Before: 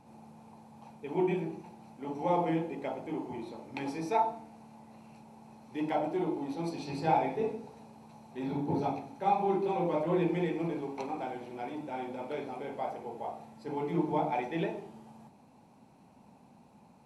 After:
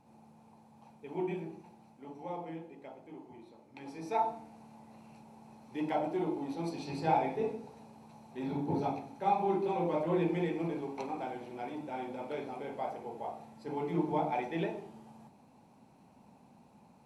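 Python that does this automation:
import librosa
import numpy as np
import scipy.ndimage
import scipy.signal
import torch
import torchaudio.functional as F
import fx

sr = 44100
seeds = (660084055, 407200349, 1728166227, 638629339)

y = fx.gain(x, sr, db=fx.line((1.76, -6.0), (2.4, -12.5), (3.75, -12.5), (4.25, -1.5)))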